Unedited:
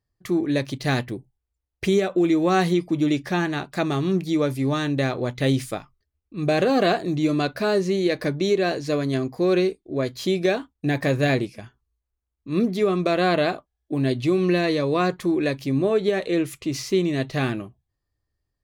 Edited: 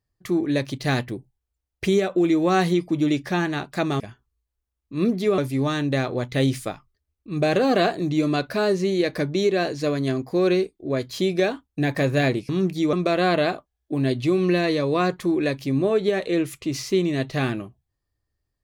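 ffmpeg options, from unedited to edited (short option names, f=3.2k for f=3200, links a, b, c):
-filter_complex "[0:a]asplit=5[a][b][c][d][e];[a]atrim=end=4.002[f];[b]atrim=start=11.548:end=12.932[g];[c]atrim=start=4.438:end=11.552[h];[d]atrim=start=3.998:end=4.442[i];[e]atrim=start=12.928[j];[f][g]acrossfade=d=0.004:c1=hsin:c2=hsin[k];[k][h]acrossfade=d=0.004:c1=hsin:c2=hsin[l];[l][i]acrossfade=d=0.004:c1=hsin:c2=hsin[m];[m][j]acrossfade=d=0.004:c1=hsin:c2=hsin"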